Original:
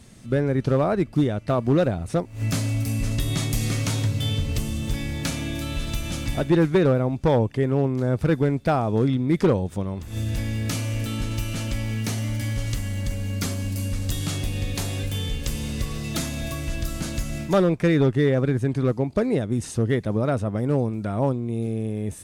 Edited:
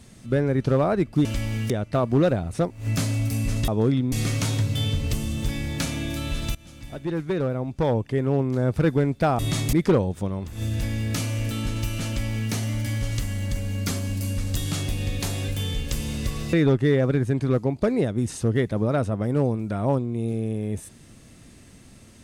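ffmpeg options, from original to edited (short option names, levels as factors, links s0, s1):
-filter_complex "[0:a]asplit=9[s0][s1][s2][s3][s4][s5][s6][s7][s8];[s0]atrim=end=1.252[s9];[s1]atrim=start=11.618:end=12.072[s10];[s2]atrim=start=1.248:end=3.232[s11];[s3]atrim=start=8.838:end=9.282[s12];[s4]atrim=start=3.568:end=6,asetpts=PTS-STARTPTS,afade=t=out:st=2.428:d=0.004:c=hsin:silence=0.0841395[s13];[s5]atrim=start=6:end=8.842,asetpts=PTS-STARTPTS,afade=t=in:d=1.98:silence=0.0841395[s14];[s6]atrim=start=3.228:end=3.572[s15];[s7]atrim=start=9.278:end=16.082[s16];[s8]atrim=start=17.868[s17];[s9][s10]acrossfade=d=0.004:c1=hsin:c2=hsin[s18];[s18][s11]acrossfade=d=0.004:c1=hsin:c2=hsin[s19];[s19][s12]acrossfade=d=0.004:c1=hsin:c2=hsin[s20];[s13][s14]concat=n=2:v=0:a=1[s21];[s20][s21]acrossfade=d=0.004:c1=hsin:c2=hsin[s22];[s22][s15]acrossfade=d=0.004:c1=hsin:c2=hsin[s23];[s23][s16]acrossfade=d=0.004:c1=hsin:c2=hsin[s24];[s24][s17]acrossfade=d=0.004:c1=hsin:c2=hsin"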